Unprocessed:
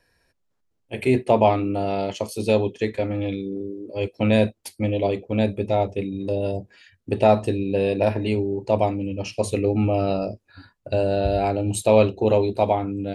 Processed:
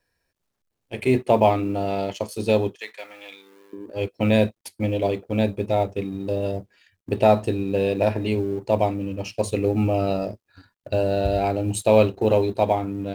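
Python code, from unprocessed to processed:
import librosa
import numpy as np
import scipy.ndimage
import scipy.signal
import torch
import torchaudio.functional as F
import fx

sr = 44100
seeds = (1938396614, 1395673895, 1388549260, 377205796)

y = fx.law_mismatch(x, sr, coded='A')
y = fx.highpass(y, sr, hz=1200.0, slope=12, at=(2.75, 3.73))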